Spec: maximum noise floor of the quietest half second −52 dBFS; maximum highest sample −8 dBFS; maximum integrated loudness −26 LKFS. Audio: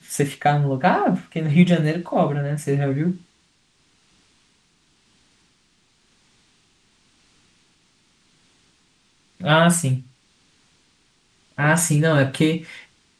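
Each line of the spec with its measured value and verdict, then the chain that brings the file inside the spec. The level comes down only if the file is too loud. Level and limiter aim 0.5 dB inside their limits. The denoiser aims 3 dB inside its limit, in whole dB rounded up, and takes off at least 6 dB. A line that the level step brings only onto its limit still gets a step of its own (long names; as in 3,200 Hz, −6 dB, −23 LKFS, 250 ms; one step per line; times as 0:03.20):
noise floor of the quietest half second −62 dBFS: in spec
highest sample −4.0 dBFS: out of spec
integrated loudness −20.0 LKFS: out of spec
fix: level −6.5 dB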